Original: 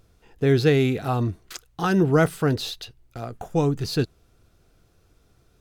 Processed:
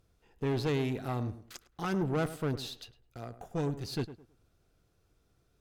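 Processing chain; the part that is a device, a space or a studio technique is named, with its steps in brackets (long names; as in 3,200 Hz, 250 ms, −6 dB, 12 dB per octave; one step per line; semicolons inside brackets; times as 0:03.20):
rockabilly slapback (tube saturation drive 18 dB, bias 0.6; tape delay 104 ms, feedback 31%, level −11.5 dB, low-pass 1,400 Hz)
level −7.5 dB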